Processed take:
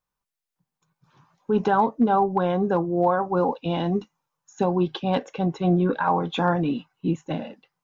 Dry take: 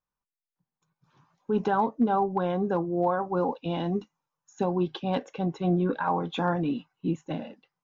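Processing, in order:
parametric band 280 Hz −2 dB
level +5 dB

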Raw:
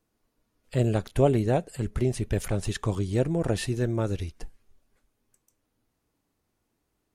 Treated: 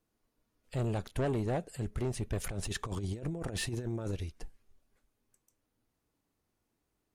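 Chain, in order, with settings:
0:02.44–0:04.13: compressor whose output falls as the input rises −29 dBFS, ratio −0.5
soft clipping −22.5 dBFS, distortion −10 dB
level −4.5 dB

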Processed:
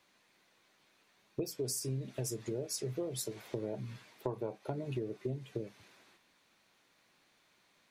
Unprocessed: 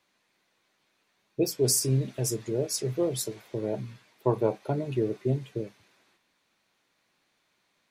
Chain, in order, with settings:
downward compressor 8 to 1, threshold −37 dBFS, peak gain reduction 17.5 dB
level +2.5 dB

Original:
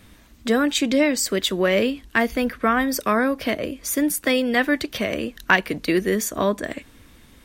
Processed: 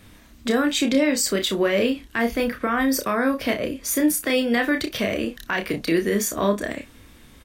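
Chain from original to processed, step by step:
brickwall limiter −12.5 dBFS, peak gain reduction 11.5 dB
ambience of single reflections 30 ms −5.5 dB, 59 ms −17.5 dB

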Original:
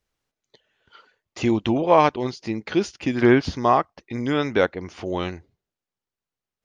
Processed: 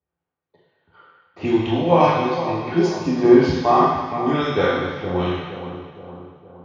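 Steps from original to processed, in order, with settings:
gain on a spectral selection 0:02.74–0:03.39, 1,200–3,800 Hz −9 dB
low-pass that shuts in the quiet parts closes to 1,500 Hz, open at −15.5 dBFS
spectral tilt +2 dB per octave
automatic gain control gain up to 5 dB
tuned comb filter 170 Hz, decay 0.63 s, harmonics odd, mix 80%
echo with a time of its own for lows and highs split 1,100 Hz, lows 465 ms, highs 203 ms, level −10.5 dB
convolution reverb RT60 1.0 s, pre-delay 3 ms, DRR −6 dB
level −3 dB

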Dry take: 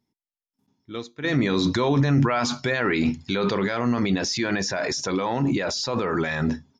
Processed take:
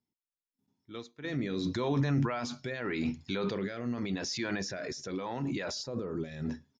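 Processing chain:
far-end echo of a speakerphone 110 ms, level −29 dB
rotating-speaker cabinet horn 0.85 Hz
0:05.82–0:06.44: parametric band 3,400 Hz → 1,000 Hz −13.5 dB 1.6 octaves
level −8.5 dB

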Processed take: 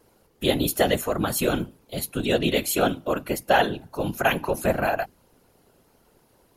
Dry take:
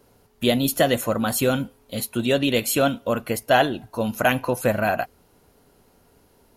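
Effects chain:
mains-hum notches 50/100/150/200/250 Hz
random phases in short frames
level −2 dB

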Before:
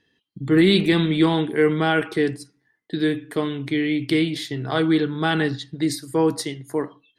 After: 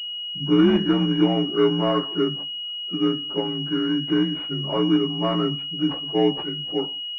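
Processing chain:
partials spread apart or drawn together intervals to 84%
switching amplifier with a slow clock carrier 2,900 Hz

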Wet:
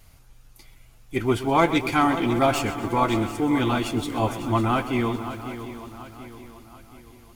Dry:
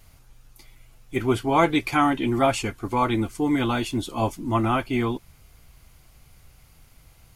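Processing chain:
stylus tracing distortion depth 0.027 ms
on a send: feedback echo with a long and a short gap by turns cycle 731 ms, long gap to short 3 to 1, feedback 42%, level −12 dB
on the sum: feedback echo at a low word length 127 ms, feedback 55%, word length 7 bits, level −13.5 dB

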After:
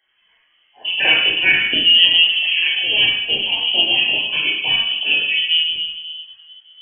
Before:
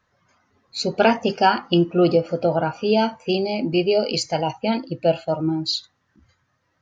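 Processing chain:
0:01.87–0:04.19: gain on one half-wave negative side −3 dB
convolution reverb RT60 1.3 s, pre-delay 17 ms, DRR −3 dB
voice inversion scrambler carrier 3,200 Hz
level −4.5 dB

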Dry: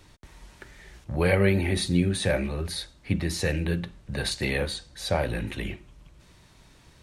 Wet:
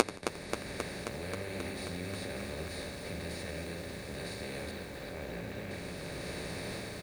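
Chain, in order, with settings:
compressor on every frequency bin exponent 0.2
automatic gain control
brickwall limiter −6.5 dBFS, peak gain reduction 5.5 dB
gate with flip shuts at −15 dBFS, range −36 dB
on a send: echo with shifted repeats 86 ms, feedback 34%, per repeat −34 Hz, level −16 dB
on the sum: flanger 0.88 Hz, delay 8.4 ms, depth 7.3 ms, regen −35%
0:04.71–0:05.71: high-frequency loss of the air 220 metres
feedback echo at a low word length 267 ms, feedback 80%, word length 11 bits, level −7.5 dB
level +15.5 dB

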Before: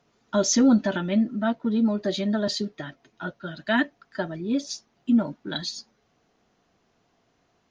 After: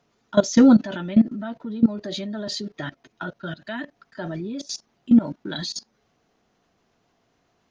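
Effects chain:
output level in coarse steps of 19 dB
level +8 dB

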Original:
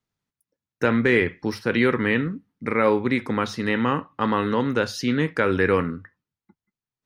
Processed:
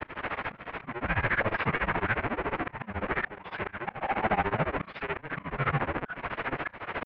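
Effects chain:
sign of each sample alone
parametric band 200 Hz −12 dB 1.5 octaves
in parallel at −0.5 dB: brickwall limiter −25 dBFS, peak gain reduction 7 dB
on the sum: granular cloud 82 ms, grains 14 per second, spray 24 ms, pitch spread up and down by 0 semitones
single-sideband voice off tune −330 Hz 390–2,700 Hz
volume swells 283 ms
level +1 dB

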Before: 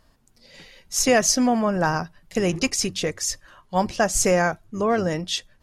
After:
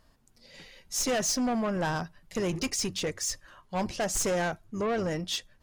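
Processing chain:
soft clipping −20.5 dBFS, distortion −9 dB
level −3.5 dB

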